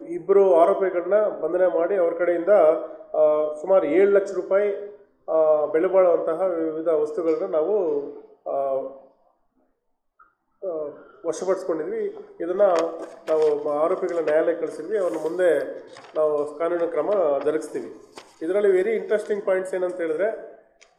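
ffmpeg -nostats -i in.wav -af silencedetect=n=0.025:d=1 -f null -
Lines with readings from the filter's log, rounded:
silence_start: 8.88
silence_end: 10.63 | silence_duration: 1.75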